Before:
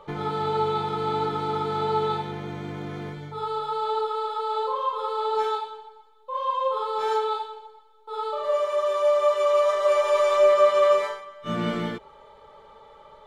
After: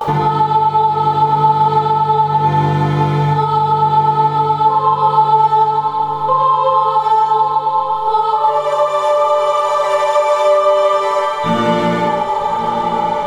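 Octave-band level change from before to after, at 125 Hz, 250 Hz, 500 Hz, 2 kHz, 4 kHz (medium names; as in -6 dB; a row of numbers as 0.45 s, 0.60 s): +17.5 dB, +13.0 dB, +6.5 dB, +10.0 dB, +8.5 dB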